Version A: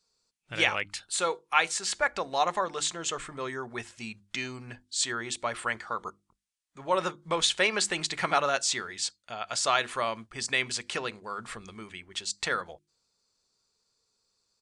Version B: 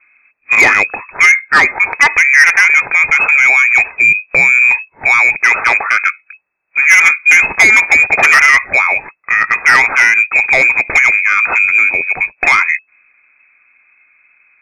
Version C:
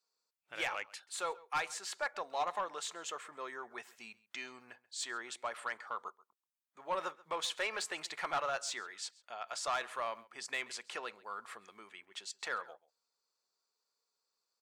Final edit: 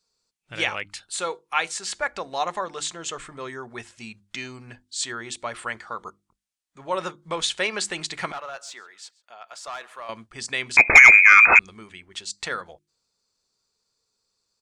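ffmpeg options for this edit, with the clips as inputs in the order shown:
ffmpeg -i take0.wav -i take1.wav -i take2.wav -filter_complex "[0:a]asplit=3[link_01][link_02][link_03];[link_01]atrim=end=8.322[link_04];[2:a]atrim=start=8.318:end=10.092[link_05];[link_02]atrim=start=10.088:end=10.772[link_06];[1:a]atrim=start=10.768:end=11.592[link_07];[link_03]atrim=start=11.588[link_08];[link_04][link_05]acrossfade=duration=0.004:curve1=hsin:curve2=hsin[link_09];[link_09][link_06]acrossfade=duration=0.004:curve1=hsin:curve2=hsin[link_10];[link_10][link_07]acrossfade=duration=0.004:curve1=hsin:curve2=hsin[link_11];[link_11][link_08]acrossfade=duration=0.004:curve1=hsin:curve2=hsin" out.wav

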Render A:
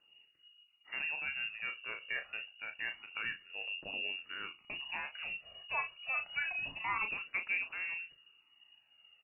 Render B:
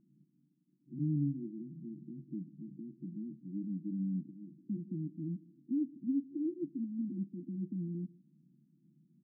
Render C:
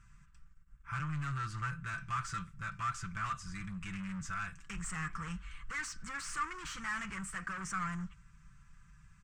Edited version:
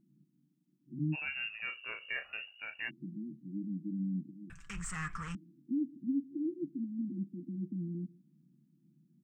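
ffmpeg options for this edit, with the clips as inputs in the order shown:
ffmpeg -i take0.wav -i take1.wav -i take2.wav -filter_complex "[1:a]asplit=3[link_01][link_02][link_03];[link_01]atrim=end=1.16[link_04];[0:a]atrim=start=1.12:end=2.91[link_05];[link_02]atrim=start=2.87:end=4.502[link_06];[2:a]atrim=start=4.498:end=5.352[link_07];[link_03]atrim=start=5.348[link_08];[link_04][link_05]acrossfade=duration=0.04:curve1=tri:curve2=tri[link_09];[link_09][link_06]acrossfade=duration=0.04:curve1=tri:curve2=tri[link_10];[link_10][link_07]acrossfade=duration=0.004:curve1=hsin:curve2=hsin[link_11];[link_11][link_08]acrossfade=duration=0.004:curve1=hsin:curve2=hsin" out.wav

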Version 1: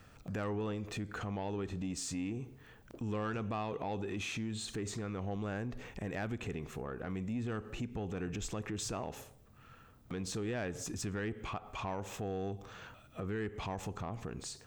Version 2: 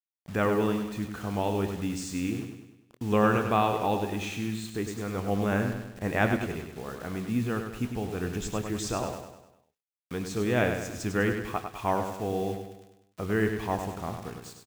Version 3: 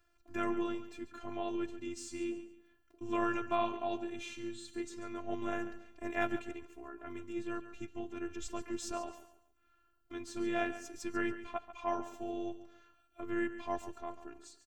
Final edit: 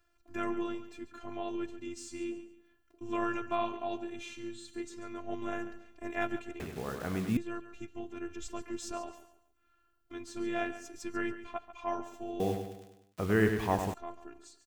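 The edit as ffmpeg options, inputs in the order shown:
ffmpeg -i take0.wav -i take1.wav -i take2.wav -filter_complex "[1:a]asplit=2[link_01][link_02];[2:a]asplit=3[link_03][link_04][link_05];[link_03]atrim=end=6.602[link_06];[link_01]atrim=start=6.598:end=7.372[link_07];[link_04]atrim=start=7.368:end=12.402[link_08];[link_02]atrim=start=12.398:end=13.942[link_09];[link_05]atrim=start=13.938[link_10];[link_06][link_07]acrossfade=duration=0.004:curve1=hsin:curve2=hsin[link_11];[link_11][link_08]acrossfade=duration=0.004:curve1=hsin:curve2=hsin[link_12];[link_12][link_09]acrossfade=duration=0.004:curve1=hsin:curve2=hsin[link_13];[link_13][link_10]acrossfade=duration=0.004:curve1=hsin:curve2=hsin" out.wav

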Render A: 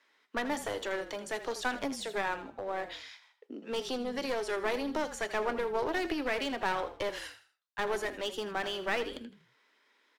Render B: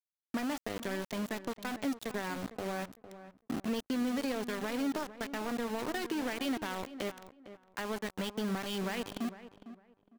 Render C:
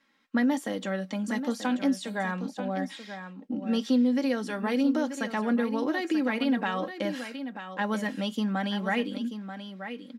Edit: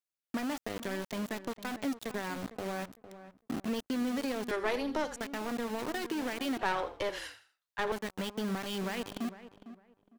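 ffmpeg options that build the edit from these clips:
ffmpeg -i take0.wav -i take1.wav -filter_complex "[0:a]asplit=2[link_01][link_02];[1:a]asplit=3[link_03][link_04][link_05];[link_03]atrim=end=4.512[link_06];[link_01]atrim=start=4.508:end=5.162[link_07];[link_04]atrim=start=5.158:end=6.592[link_08];[link_02]atrim=start=6.588:end=7.922[link_09];[link_05]atrim=start=7.918[link_10];[link_06][link_07]acrossfade=duration=0.004:curve1=hsin:curve2=hsin[link_11];[link_11][link_08]acrossfade=duration=0.004:curve1=hsin:curve2=hsin[link_12];[link_12][link_09]acrossfade=duration=0.004:curve1=hsin:curve2=hsin[link_13];[link_13][link_10]acrossfade=duration=0.004:curve1=hsin:curve2=hsin" out.wav

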